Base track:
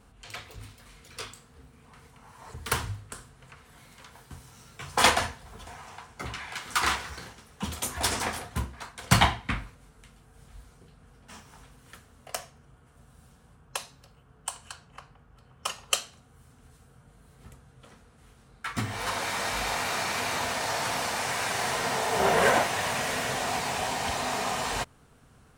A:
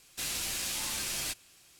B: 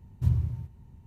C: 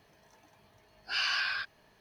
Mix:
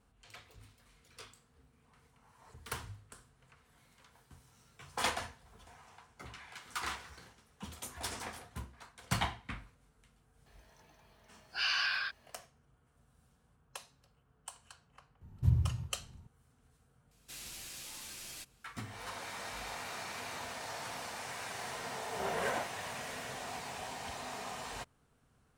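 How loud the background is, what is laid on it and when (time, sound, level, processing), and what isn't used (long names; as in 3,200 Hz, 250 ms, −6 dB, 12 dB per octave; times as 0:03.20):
base track −13 dB
0:10.46: mix in C −1.5 dB + low-shelf EQ 280 Hz −7.5 dB
0:15.21: mix in B −3.5 dB
0:17.11: mix in A −12.5 dB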